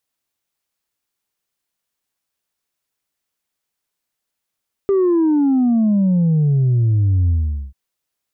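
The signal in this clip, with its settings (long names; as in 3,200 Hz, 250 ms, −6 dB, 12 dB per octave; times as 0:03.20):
bass drop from 400 Hz, over 2.84 s, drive 1.5 dB, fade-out 0.44 s, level −12.5 dB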